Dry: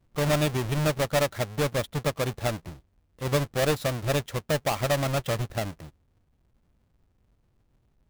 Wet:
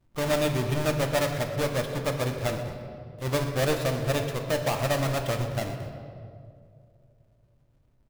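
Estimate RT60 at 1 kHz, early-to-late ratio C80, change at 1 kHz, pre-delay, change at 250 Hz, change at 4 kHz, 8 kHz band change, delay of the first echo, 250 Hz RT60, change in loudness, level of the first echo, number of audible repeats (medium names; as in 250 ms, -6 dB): 2.0 s, 7.0 dB, -0.5 dB, 3 ms, 0.0 dB, -1.0 dB, -1.0 dB, 123 ms, 2.6 s, -0.5 dB, -15.5 dB, 1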